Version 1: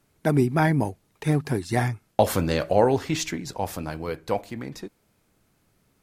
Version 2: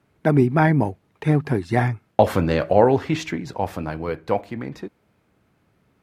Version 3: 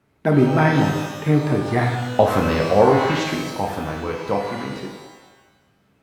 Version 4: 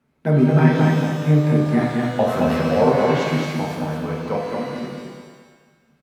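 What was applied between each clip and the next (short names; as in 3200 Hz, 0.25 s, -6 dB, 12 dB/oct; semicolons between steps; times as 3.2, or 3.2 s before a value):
HPF 55 Hz; tone controls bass 0 dB, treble -14 dB; gain +4 dB
shimmer reverb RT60 1.1 s, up +12 st, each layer -8 dB, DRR 1 dB; gain -1 dB
flange 1.2 Hz, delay 4.2 ms, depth 2.7 ms, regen -67%; feedback echo 0.22 s, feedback 31%, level -3 dB; on a send at -7 dB: reverb RT60 0.60 s, pre-delay 3 ms; on the sum: gain -1 dB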